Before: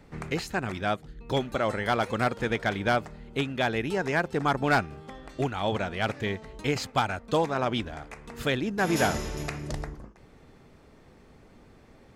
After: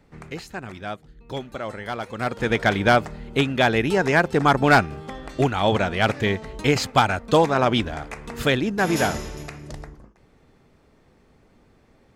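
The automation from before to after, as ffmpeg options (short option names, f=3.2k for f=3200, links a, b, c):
-af "volume=8dB,afade=t=in:st=2.15:d=0.48:silence=0.251189,afade=t=out:st=8.28:d=1.2:silence=0.281838"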